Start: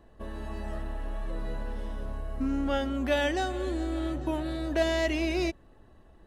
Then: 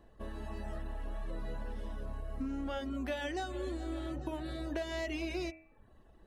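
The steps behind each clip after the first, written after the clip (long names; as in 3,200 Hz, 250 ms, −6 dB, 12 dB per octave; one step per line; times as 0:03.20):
reverb reduction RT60 0.58 s
downward compressor 10 to 1, threshold −30 dBFS, peak gain reduction 9.5 dB
hum removal 80.17 Hz, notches 33
level −3 dB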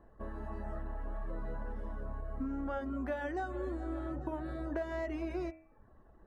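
high shelf with overshoot 2,100 Hz −12.5 dB, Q 1.5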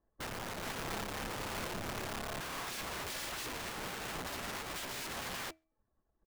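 wrap-around overflow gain 39 dB
slap from a distant wall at 23 metres, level −23 dB
expander for the loud parts 2.5 to 1, over −59 dBFS
level +5 dB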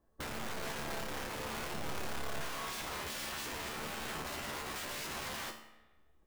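downward compressor 3 to 1, threshold −48 dBFS, peak gain reduction 8.5 dB
tuned comb filter 74 Hz, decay 0.56 s, harmonics all, mix 80%
spring reverb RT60 1.2 s, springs 31/36 ms, chirp 45 ms, DRR 11 dB
level +15 dB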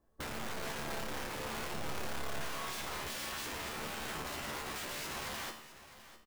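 single-tap delay 655 ms −15 dB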